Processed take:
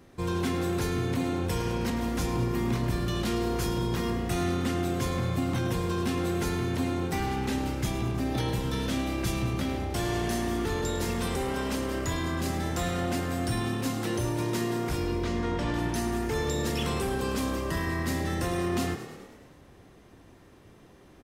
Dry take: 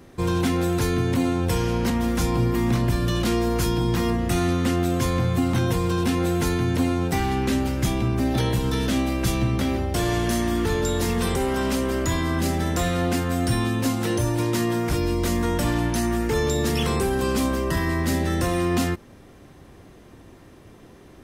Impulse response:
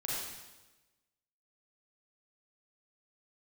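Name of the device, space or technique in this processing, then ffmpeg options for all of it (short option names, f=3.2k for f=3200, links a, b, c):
filtered reverb send: -filter_complex "[0:a]asettb=1/sr,asplit=3[a][b][c];[a]atrim=end=15.034[d];[b]atrim=start=15.03:end=15.74,asetpts=PTS-STARTPTS,afade=t=in:d=0.004:c=qsin,afade=t=out:st=0.706:d=0.004:c=qsin,lowpass=4.5k[e];[c]atrim=start=15.736[f];[d][e]acrossfade=d=0.004:c1=hsin:c2=qsin[g];[g][f]acrossfade=d=0.004:c1=qsin:c2=hsin,asplit=8[h][i][j][k][l][m][n][o];[i]adelay=105,afreqshift=35,volume=-12dB[p];[j]adelay=210,afreqshift=70,volume=-16.3dB[q];[k]adelay=315,afreqshift=105,volume=-20.6dB[r];[l]adelay=420,afreqshift=140,volume=-24.9dB[s];[m]adelay=525,afreqshift=175,volume=-29.2dB[t];[n]adelay=630,afreqshift=210,volume=-33.5dB[u];[o]adelay=735,afreqshift=245,volume=-37.8dB[v];[h][p][q][r][s][t][u][v]amix=inputs=8:normalize=0,asplit=2[w][x];[x]highpass=520,lowpass=8.5k[y];[1:a]atrim=start_sample=2205[z];[y][z]afir=irnorm=-1:irlink=0,volume=-13.5dB[aa];[w][aa]amix=inputs=2:normalize=0,volume=-7dB"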